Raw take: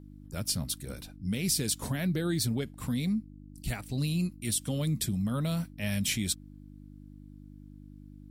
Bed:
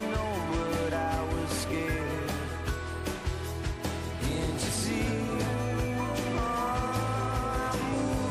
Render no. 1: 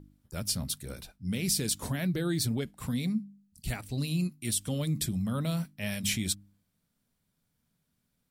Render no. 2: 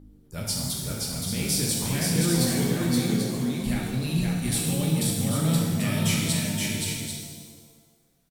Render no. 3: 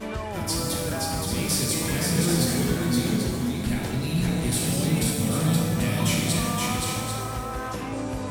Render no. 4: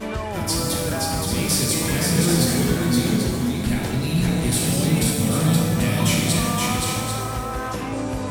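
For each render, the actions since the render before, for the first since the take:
de-hum 50 Hz, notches 6
on a send: multi-tap echo 522/789 ms -3/-7.5 dB; on the sum: pitch-shifted reverb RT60 1.4 s, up +7 st, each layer -8 dB, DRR -2 dB
add bed -1 dB
trim +4 dB

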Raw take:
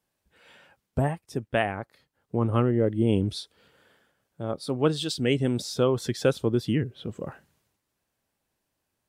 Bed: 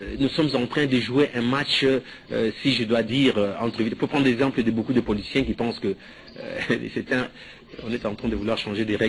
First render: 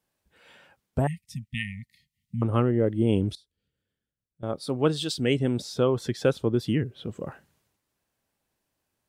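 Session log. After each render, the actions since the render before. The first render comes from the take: 1.07–2.42 s: brick-wall FIR band-stop 240–1800 Hz; 3.35–4.43 s: amplifier tone stack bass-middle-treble 10-0-1; 5.39–6.60 s: treble shelf 4.3 kHz -6 dB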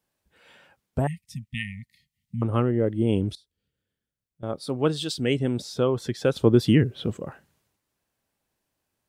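6.36–7.17 s: gain +7 dB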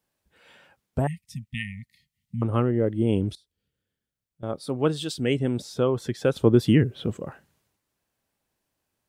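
dynamic bell 4.5 kHz, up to -4 dB, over -46 dBFS, Q 1.4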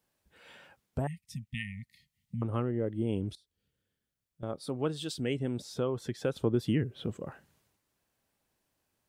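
compression 1.5:1, threshold -43 dBFS, peak gain reduction 11 dB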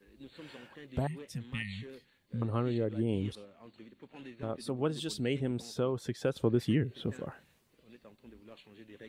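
add bed -28.5 dB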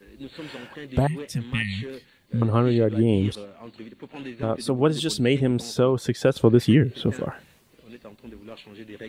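trim +11.5 dB

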